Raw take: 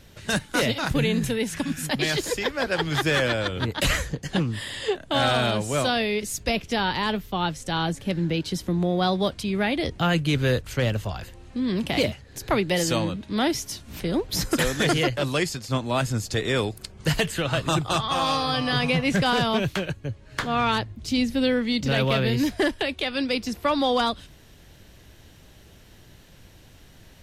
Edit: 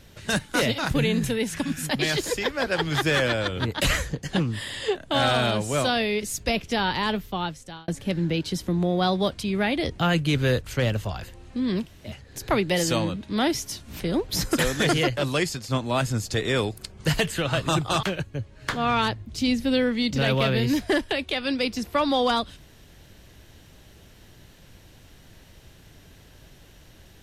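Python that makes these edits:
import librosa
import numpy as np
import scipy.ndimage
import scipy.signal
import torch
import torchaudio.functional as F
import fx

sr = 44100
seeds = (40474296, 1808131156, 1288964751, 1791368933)

y = fx.edit(x, sr, fx.fade_out_span(start_s=7.23, length_s=0.65),
    fx.room_tone_fill(start_s=11.83, length_s=0.26, crossfade_s=0.1),
    fx.cut(start_s=18.03, length_s=1.7), tone=tone)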